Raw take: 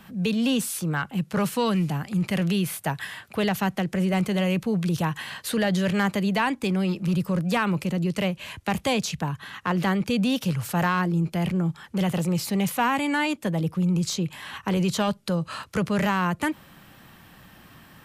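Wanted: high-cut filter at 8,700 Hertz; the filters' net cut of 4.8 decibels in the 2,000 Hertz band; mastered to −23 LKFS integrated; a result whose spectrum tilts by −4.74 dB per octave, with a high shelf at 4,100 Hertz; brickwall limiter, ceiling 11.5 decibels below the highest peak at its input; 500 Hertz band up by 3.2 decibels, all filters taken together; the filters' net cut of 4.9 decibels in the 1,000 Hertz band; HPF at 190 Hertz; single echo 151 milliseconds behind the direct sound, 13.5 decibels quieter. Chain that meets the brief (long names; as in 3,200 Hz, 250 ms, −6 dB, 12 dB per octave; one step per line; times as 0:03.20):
high-pass filter 190 Hz
low-pass filter 8,700 Hz
parametric band 500 Hz +6 dB
parametric band 1,000 Hz −7.5 dB
parametric band 2,000 Hz −6 dB
high-shelf EQ 4,100 Hz +8 dB
brickwall limiter −23 dBFS
single-tap delay 151 ms −13.5 dB
level +8.5 dB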